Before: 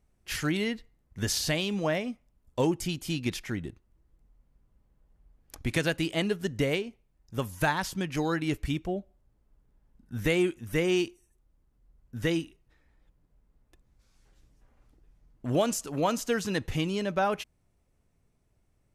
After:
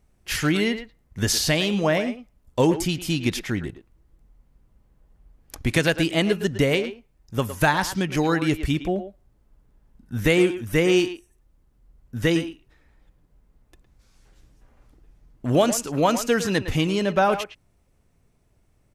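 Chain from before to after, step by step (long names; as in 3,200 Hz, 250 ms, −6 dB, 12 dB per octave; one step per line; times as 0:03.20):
far-end echo of a speakerphone 110 ms, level −10 dB
level +7 dB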